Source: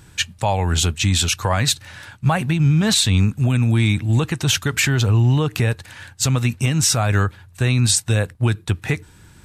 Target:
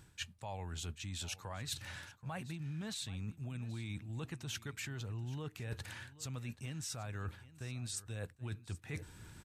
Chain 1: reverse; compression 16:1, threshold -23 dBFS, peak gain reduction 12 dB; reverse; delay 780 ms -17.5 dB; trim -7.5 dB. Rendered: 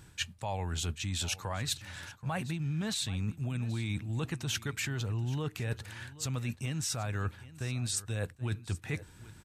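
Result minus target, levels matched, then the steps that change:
compression: peak gain reduction -8.5 dB
change: compression 16:1, threshold -32 dBFS, peak gain reduction 20 dB

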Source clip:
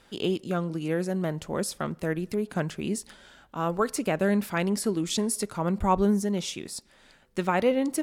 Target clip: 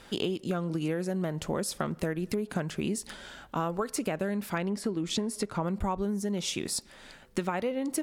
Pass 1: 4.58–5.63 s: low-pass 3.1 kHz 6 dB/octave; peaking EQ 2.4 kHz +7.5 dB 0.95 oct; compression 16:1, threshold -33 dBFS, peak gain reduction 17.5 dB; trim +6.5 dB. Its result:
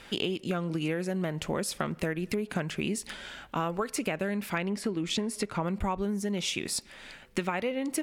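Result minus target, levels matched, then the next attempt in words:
2 kHz band +4.0 dB
4.58–5.63 s: low-pass 3.1 kHz 6 dB/octave; compression 16:1, threshold -33 dBFS, peak gain reduction 16.5 dB; trim +6.5 dB

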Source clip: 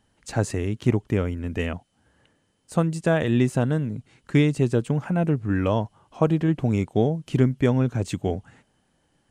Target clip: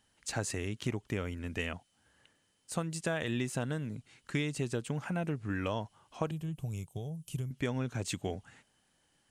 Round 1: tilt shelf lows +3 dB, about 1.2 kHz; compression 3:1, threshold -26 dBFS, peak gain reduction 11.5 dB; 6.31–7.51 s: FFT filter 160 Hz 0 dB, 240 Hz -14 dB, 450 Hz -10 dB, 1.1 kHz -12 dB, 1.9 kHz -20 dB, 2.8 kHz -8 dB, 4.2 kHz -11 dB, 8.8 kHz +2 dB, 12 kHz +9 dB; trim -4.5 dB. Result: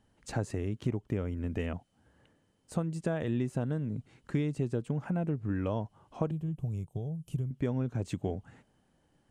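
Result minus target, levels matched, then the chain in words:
1 kHz band -3.5 dB
tilt shelf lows -5.5 dB, about 1.2 kHz; compression 3:1, threshold -26 dBFS, peak gain reduction 7 dB; 6.31–7.51 s: FFT filter 160 Hz 0 dB, 240 Hz -14 dB, 450 Hz -10 dB, 1.1 kHz -12 dB, 1.9 kHz -20 dB, 2.8 kHz -8 dB, 4.2 kHz -11 dB, 8.8 kHz +2 dB, 12 kHz +9 dB; trim -4.5 dB

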